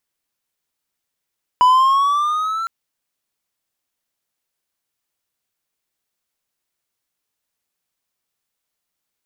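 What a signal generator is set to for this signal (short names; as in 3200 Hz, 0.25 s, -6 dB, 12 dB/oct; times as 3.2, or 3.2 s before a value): gliding synth tone triangle, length 1.06 s, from 988 Hz, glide +5.5 st, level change -13 dB, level -6 dB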